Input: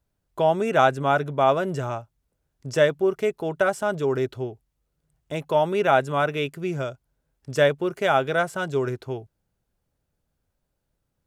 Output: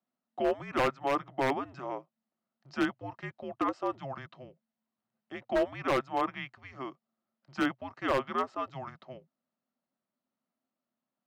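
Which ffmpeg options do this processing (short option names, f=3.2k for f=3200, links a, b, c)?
-af "afreqshift=-270,highpass=450,equalizer=f=450:t=q:w=4:g=-7,equalizer=f=650:t=q:w=4:g=5,equalizer=f=1.1k:t=q:w=4:g=-3,equalizer=f=1.6k:t=q:w=4:g=-3,equalizer=f=2.4k:t=q:w=4:g=-8,equalizer=f=3.4k:t=q:w=4:g=-8,lowpass=f=3.8k:w=0.5412,lowpass=f=3.8k:w=1.3066,aeval=exprs='0.133*(abs(mod(val(0)/0.133+3,4)-2)-1)':c=same,volume=-2.5dB"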